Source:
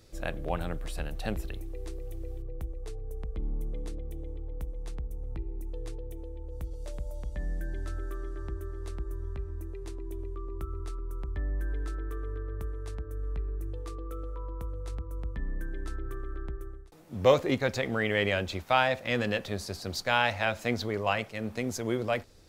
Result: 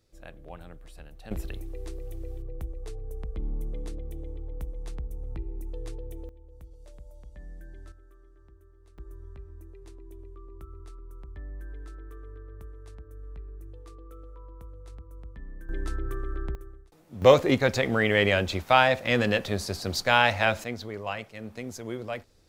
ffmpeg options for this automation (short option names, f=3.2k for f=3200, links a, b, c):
-af "asetnsamples=n=441:p=0,asendcmd='1.31 volume volume 1dB;6.29 volume volume -10.5dB;7.92 volume volume -19dB;8.98 volume volume -8dB;15.69 volume volume 4.5dB;16.55 volume volume -3.5dB;17.22 volume volume 5dB;20.64 volume volume -5dB',volume=-12dB"